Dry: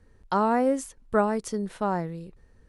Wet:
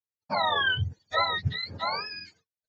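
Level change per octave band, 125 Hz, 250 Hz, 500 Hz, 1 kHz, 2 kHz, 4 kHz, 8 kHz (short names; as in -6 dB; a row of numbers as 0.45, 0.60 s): +4.0 dB, -17.5 dB, -9.5 dB, -1.5 dB, +9.5 dB, +20.0 dB, under -20 dB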